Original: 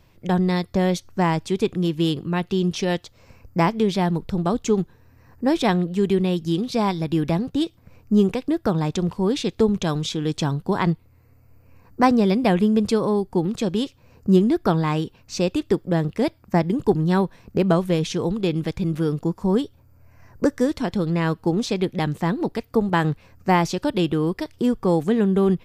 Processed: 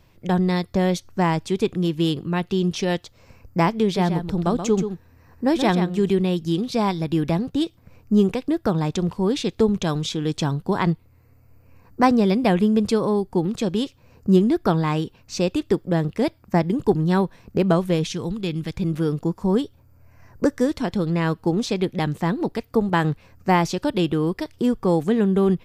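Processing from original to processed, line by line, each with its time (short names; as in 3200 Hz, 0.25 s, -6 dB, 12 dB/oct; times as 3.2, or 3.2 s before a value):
3.83–6.1 echo 0.129 s -8.5 dB
18.07–18.74 bell 570 Hz -7.5 dB 2.3 oct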